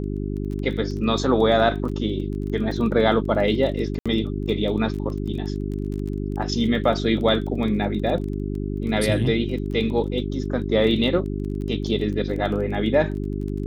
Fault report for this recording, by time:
crackle 20/s -31 dBFS
hum 50 Hz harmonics 8 -27 dBFS
1.89 gap 3.4 ms
3.99–4.06 gap 66 ms

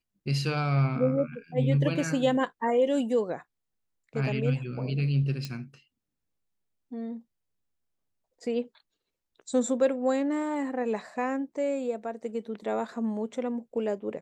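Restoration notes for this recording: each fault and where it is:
5.45 pop -20 dBFS

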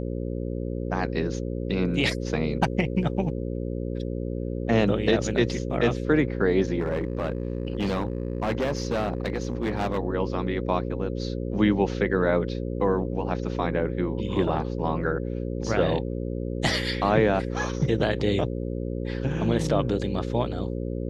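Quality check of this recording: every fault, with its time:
buzz 60 Hz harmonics 9 -30 dBFS
6.79–9.98 clipped -21.5 dBFS

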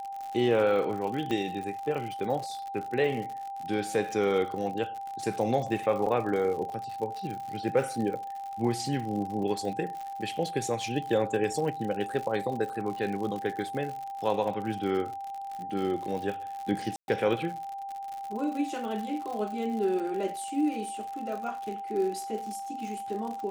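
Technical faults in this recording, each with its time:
crackle 90/s -35 dBFS
tone 790 Hz -35 dBFS
1.31 pop -19 dBFS
6.06–6.07 gap 5.2 ms
16.96–17.08 gap 0.121 s

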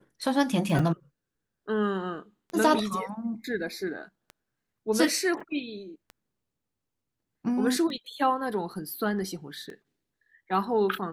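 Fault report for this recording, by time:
tick 33 1/3 rpm
0.79 gap 4.3 ms
5.4 gap 4.6 ms

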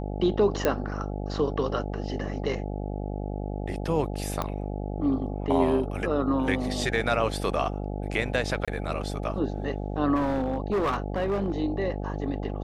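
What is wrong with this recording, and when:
buzz 50 Hz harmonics 17 -32 dBFS
0.65 pop -9 dBFS
4.42 pop -14 dBFS
8.65–8.68 gap 26 ms
10.15–11.6 clipped -22 dBFS

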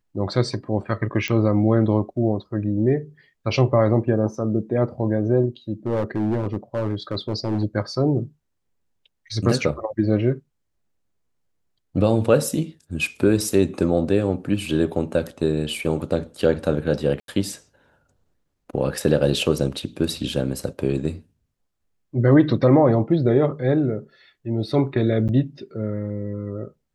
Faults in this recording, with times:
1.28 pop -10 dBFS
5.86–7.64 clipped -18 dBFS
17.2–17.28 gap 82 ms
25.28–25.29 gap 8.6 ms

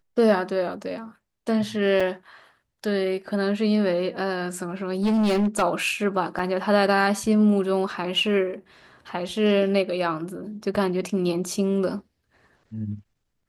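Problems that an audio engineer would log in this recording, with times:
2 gap 5 ms
5.02–5.63 clipped -18 dBFS
6.39 gap 3.5 ms

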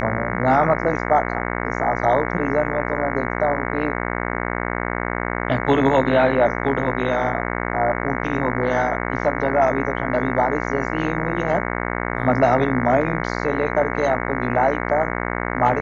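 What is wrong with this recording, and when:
buzz 60 Hz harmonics 37 -25 dBFS

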